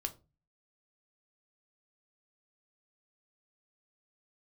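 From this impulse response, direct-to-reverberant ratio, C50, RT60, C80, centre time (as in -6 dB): 5.5 dB, 18.0 dB, 0.30 s, 23.5 dB, 6 ms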